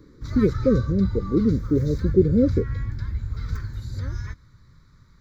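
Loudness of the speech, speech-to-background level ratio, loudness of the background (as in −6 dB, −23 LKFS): −22.5 LKFS, 7.5 dB, −30.0 LKFS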